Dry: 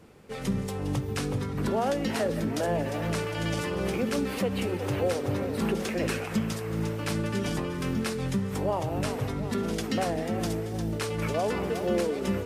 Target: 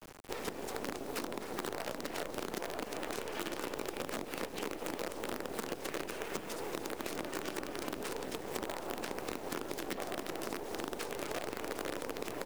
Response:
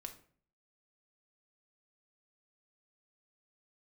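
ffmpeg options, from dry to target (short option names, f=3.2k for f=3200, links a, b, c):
-filter_complex "[0:a]lowshelf=f=210:t=q:w=3:g=-11.5,afftfilt=real='hypot(re,im)*cos(2*PI*random(0))':imag='hypot(re,im)*sin(2*PI*random(1))':win_size=512:overlap=0.75,acompressor=threshold=-33dB:ratio=12,acrusher=bits=6:dc=4:mix=0:aa=0.000001,acrossover=split=300|1700[a][b][c];[a]acompressor=threshold=-56dB:ratio=4[d];[b]acompressor=threshold=-46dB:ratio=4[e];[c]acompressor=threshold=-50dB:ratio=4[f];[d][e][f]amix=inputs=3:normalize=0,asplit=2[g][h];[h]aecho=0:1:299:0.141[i];[g][i]amix=inputs=2:normalize=0,volume=7.5dB"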